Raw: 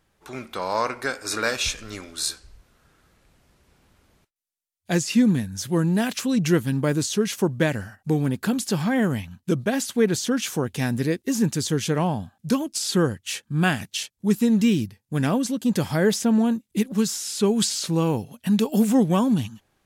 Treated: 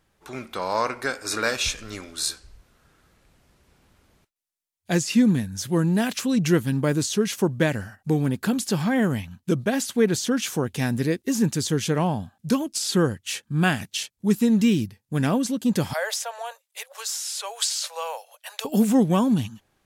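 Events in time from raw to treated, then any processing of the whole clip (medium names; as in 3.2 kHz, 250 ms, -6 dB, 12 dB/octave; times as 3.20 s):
15.93–18.65 s: steep high-pass 530 Hz 72 dB/octave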